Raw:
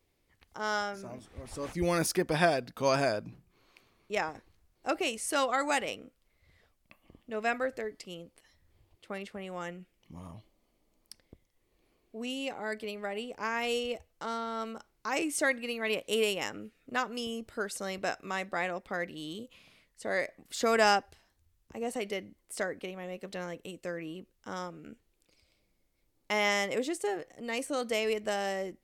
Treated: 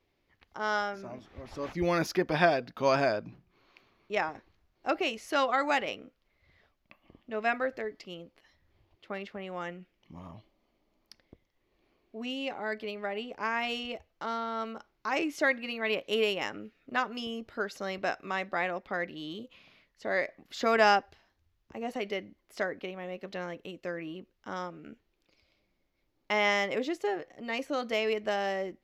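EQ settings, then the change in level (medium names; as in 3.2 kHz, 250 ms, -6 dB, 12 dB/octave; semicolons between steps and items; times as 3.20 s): boxcar filter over 5 samples; bass shelf 170 Hz -6 dB; band-stop 480 Hz, Q 12; +2.5 dB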